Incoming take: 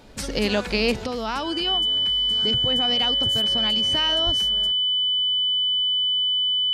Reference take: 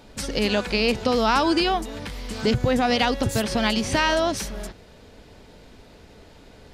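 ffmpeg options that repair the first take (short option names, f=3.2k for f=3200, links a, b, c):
-filter_complex "[0:a]bandreject=f=3k:w=30,asplit=3[a][b][c];[a]afade=t=out:st=4.25:d=0.02[d];[b]highpass=f=140:w=0.5412,highpass=f=140:w=1.3066,afade=t=in:st=4.25:d=0.02,afade=t=out:st=4.37:d=0.02[e];[c]afade=t=in:st=4.37:d=0.02[f];[d][e][f]amix=inputs=3:normalize=0,asetnsamples=n=441:p=0,asendcmd='1.06 volume volume 7.5dB',volume=0dB"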